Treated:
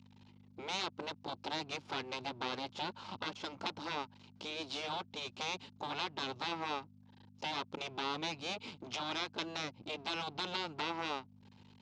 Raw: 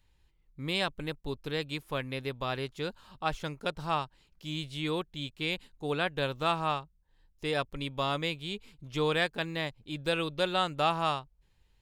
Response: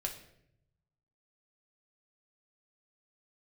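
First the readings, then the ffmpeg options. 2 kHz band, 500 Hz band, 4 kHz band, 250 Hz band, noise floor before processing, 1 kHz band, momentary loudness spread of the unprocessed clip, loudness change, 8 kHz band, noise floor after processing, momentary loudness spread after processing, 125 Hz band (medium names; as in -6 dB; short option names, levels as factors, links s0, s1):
-7.0 dB, -11.5 dB, -4.0 dB, -8.5 dB, -69 dBFS, -6.5 dB, 10 LU, -7.0 dB, +0.5 dB, -61 dBFS, 6 LU, -14.5 dB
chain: -af "aeval=exprs='max(val(0),0)':c=same,acompressor=threshold=0.00708:ratio=6,afftfilt=real='re*lt(hypot(re,im),0.0158)':imag='im*lt(hypot(re,im),0.0158)':win_size=1024:overlap=0.75,aeval=exprs='val(0)+0.000631*(sin(2*PI*50*n/s)+sin(2*PI*2*50*n/s)/2+sin(2*PI*3*50*n/s)/3+sin(2*PI*4*50*n/s)/4+sin(2*PI*5*50*n/s)/5)':c=same,highpass=f=110:w=0.5412,highpass=f=110:w=1.3066,equalizer=f=140:t=q:w=4:g=-8,equalizer=f=340:t=q:w=4:g=3,equalizer=f=870:t=q:w=4:g=6,equalizer=f=1800:t=q:w=4:g=-7,lowpass=f=5600:w=0.5412,lowpass=f=5600:w=1.3066,volume=4.47"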